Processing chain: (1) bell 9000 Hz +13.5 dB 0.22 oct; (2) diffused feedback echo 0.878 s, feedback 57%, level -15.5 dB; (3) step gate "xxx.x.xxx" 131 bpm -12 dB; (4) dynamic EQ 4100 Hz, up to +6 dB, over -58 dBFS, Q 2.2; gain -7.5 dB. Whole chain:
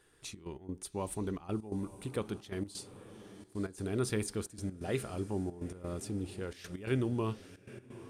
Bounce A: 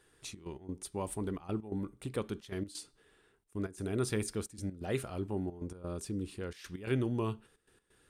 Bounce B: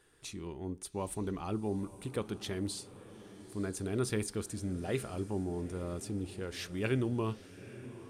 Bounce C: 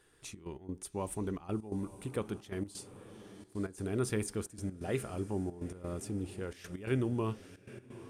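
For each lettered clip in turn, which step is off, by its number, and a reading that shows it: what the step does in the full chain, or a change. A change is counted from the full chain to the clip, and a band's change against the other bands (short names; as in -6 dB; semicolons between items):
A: 2, momentary loudness spread change -2 LU; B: 3, 4 kHz band +2.0 dB; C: 4, momentary loudness spread change +1 LU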